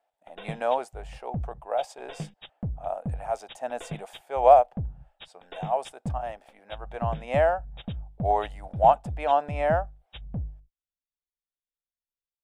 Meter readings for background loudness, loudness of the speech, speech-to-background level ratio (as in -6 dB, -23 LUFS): -38.5 LUFS, -26.0 LUFS, 12.5 dB